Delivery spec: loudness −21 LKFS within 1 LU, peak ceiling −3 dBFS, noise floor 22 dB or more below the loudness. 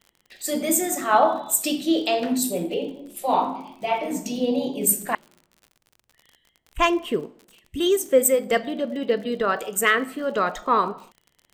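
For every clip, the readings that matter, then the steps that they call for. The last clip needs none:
crackle rate 56 per second; integrated loudness −23.0 LKFS; sample peak −5.5 dBFS; target loudness −21.0 LKFS
→ click removal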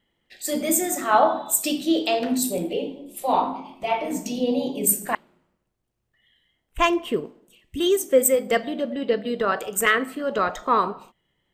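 crackle rate 0.17 per second; integrated loudness −23.0 LKFS; sample peak −5.5 dBFS; target loudness −21.0 LKFS
→ level +2 dB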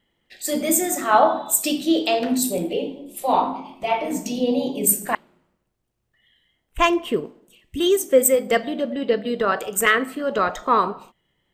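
integrated loudness −21.0 LKFS; sample peak −3.5 dBFS; background noise floor −73 dBFS

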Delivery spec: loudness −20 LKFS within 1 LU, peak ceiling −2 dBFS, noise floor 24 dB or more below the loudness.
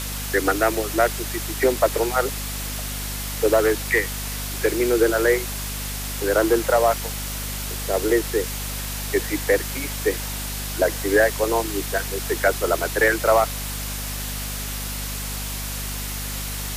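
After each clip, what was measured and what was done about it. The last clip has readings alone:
mains hum 50 Hz; hum harmonics up to 250 Hz; level of the hum −29 dBFS; background noise floor −29 dBFS; target noise floor −47 dBFS; integrated loudness −23.0 LKFS; sample peak −6.0 dBFS; target loudness −20.0 LKFS
→ hum removal 50 Hz, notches 5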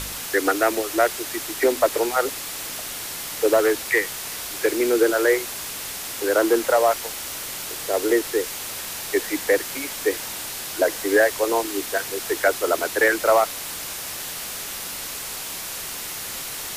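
mains hum none found; background noise floor −32 dBFS; target noise floor −47 dBFS
→ broadband denoise 15 dB, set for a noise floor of −32 dBFS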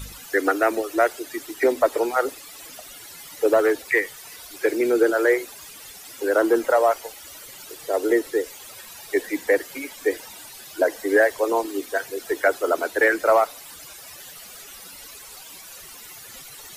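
background noise floor −42 dBFS; target noise floor −47 dBFS
→ broadband denoise 6 dB, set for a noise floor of −42 dBFS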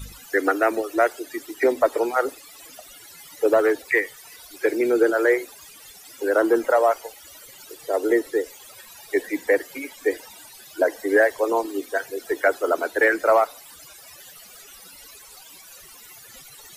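background noise floor −46 dBFS; integrated loudness −22.0 LKFS; sample peak −7.0 dBFS; target loudness −20.0 LKFS
→ level +2 dB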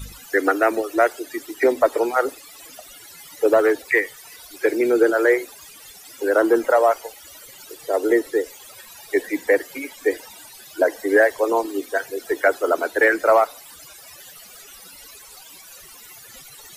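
integrated loudness −20.0 LKFS; sample peak −5.0 dBFS; background noise floor −44 dBFS

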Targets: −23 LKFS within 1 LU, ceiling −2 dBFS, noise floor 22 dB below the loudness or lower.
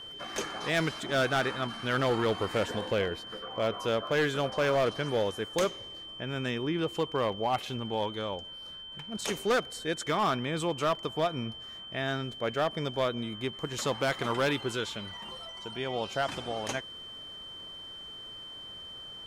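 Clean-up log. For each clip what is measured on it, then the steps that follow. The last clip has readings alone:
share of clipped samples 1.5%; peaks flattened at −21.5 dBFS; interfering tone 3,100 Hz; level of the tone −42 dBFS; integrated loudness −31.5 LKFS; sample peak −21.5 dBFS; target loudness −23.0 LKFS
→ clipped peaks rebuilt −21.5 dBFS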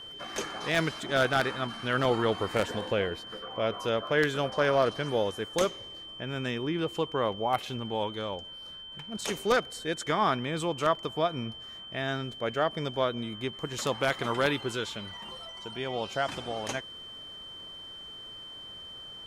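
share of clipped samples 0.0%; interfering tone 3,100 Hz; level of the tone −42 dBFS
→ notch filter 3,100 Hz, Q 30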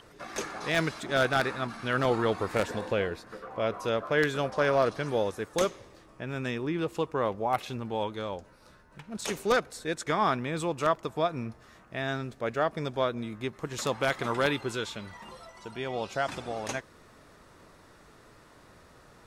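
interfering tone none found; integrated loudness −30.5 LKFS; sample peak −12.0 dBFS; target loudness −23.0 LKFS
→ level +7.5 dB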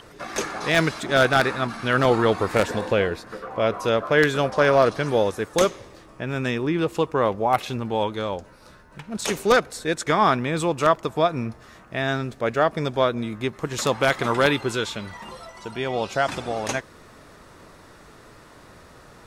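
integrated loudness −23.0 LKFS; sample peak −4.5 dBFS; background noise floor −49 dBFS

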